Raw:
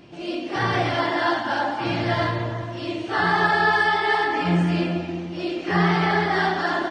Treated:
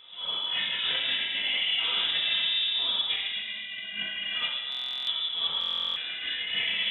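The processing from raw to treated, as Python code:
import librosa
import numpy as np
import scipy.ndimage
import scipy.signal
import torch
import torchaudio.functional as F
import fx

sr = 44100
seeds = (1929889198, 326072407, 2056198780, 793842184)

y = scipy.signal.sosfilt(scipy.signal.butter(2, 43.0, 'highpass', fs=sr, output='sos'), x)
y = fx.low_shelf(y, sr, hz=84.0, db=-6.5)
y = fx.over_compress(y, sr, threshold_db=-25.0, ratio=-0.5)
y = fx.air_absorb(y, sr, metres=250.0)
y = fx.room_shoebox(y, sr, seeds[0], volume_m3=1100.0, walls='mixed', distance_m=2.2)
y = fx.freq_invert(y, sr, carrier_hz=3700)
y = fx.buffer_glitch(y, sr, at_s=(4.7, 5.59), block=1024, repeats=15)
y = F.gain(torch.from_numpy(y), -7.5).numpy()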